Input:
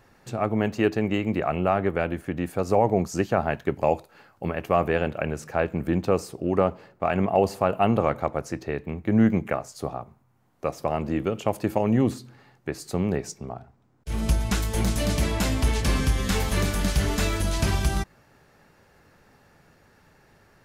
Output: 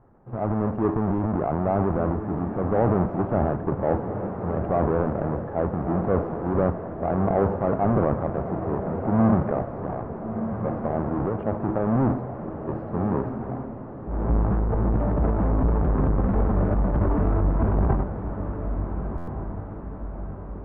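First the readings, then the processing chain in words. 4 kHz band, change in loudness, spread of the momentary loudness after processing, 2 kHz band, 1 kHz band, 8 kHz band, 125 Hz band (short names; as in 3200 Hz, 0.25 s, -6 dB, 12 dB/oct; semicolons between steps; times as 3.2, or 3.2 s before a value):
under -25 dB, +0.5 dB, 10 LU, -8.5 dB, 0.0 dB, under -40 dB, +3.0 dB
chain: half-waves squared off; transient shaper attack -2 dB, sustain +10 dB; LPF 1200 Hz 24 dB/oct; diffused feedback echo 1.379 s, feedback 51%, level -8 dB; stuck buffer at 19.17, samples 512, times 8; gain -4 dB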